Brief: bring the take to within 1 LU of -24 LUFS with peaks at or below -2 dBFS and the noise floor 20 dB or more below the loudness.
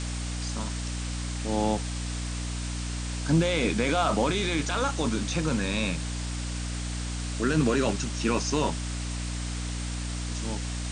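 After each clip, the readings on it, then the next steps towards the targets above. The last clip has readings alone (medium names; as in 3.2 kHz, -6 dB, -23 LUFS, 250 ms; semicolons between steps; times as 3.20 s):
hum 60 Hz; highest harmonic 300 Hz; hum level -30 dBFS; noise floor -32 dBFS; noise floor target -49 dBFS; loudness -29.0 LUFS; peak level -12.0 dBFS; loudness target -24.0 LUFS
-> hum notches 60/120/180/240/300 Hz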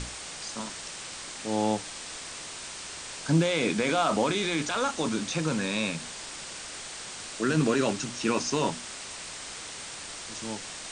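hum not found; noise floor -41 dBFS; noise floor target -50 dBFS
-> noise reduction 9 dB, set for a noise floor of -41 dBFS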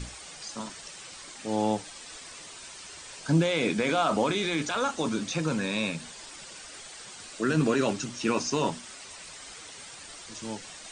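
noise floor -45 dBFS; noise floor target -49 dBFS
-> noise reduction 6 dB, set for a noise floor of -45 dBFS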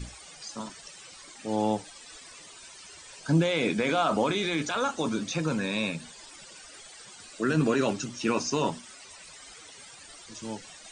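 noise floor -49 dBFS; loudness -28.5 LUFS; peak level -13.0 dBFS; loudness target -24.0 LUFS
-> trim +4.5 dB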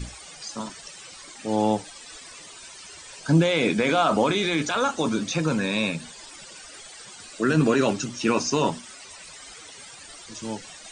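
loudness -24.0 LUFS; peak level -8.5 dBFS; noise floor -44 dBFS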